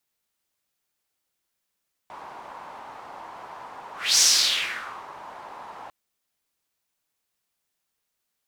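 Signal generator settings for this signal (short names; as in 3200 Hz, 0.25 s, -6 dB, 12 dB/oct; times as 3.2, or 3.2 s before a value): whoosh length 3.80 s, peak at 2.09, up 0.27 s, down 0.93 s, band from 930 Hz, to 5900 Hz, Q 3.5, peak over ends 24 dB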